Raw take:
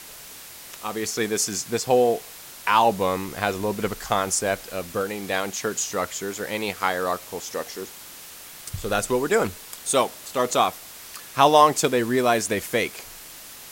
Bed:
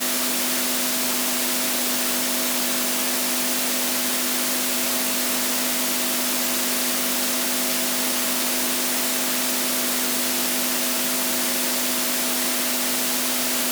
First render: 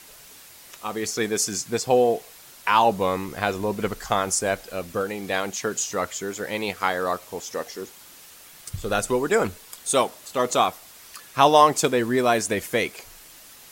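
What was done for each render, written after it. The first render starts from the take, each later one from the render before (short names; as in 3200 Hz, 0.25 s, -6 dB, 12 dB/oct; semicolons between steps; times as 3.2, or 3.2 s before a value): denoiser 6 dB, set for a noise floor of -42 dBFS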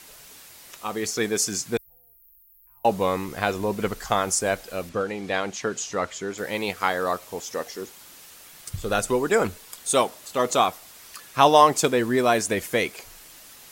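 1.77–2.85 inverse Chebyshev band-stop 140–7600 Hz, stop band 50 dB; 4.89–6.38 air absorption 64 m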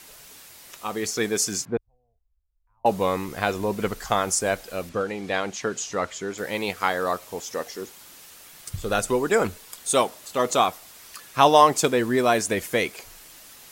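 1.65–2.86 LPF 1200 Hz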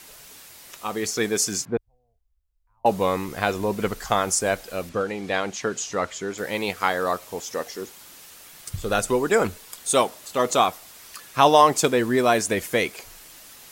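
gain +1 dB; limiter -3 dBFS, peak gain reduction 1.5 dB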